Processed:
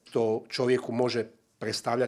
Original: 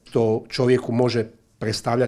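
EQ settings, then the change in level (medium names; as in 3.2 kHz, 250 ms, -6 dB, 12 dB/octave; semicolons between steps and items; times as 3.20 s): high-pass 300 Hz 6 dB/octave; -4.5 dB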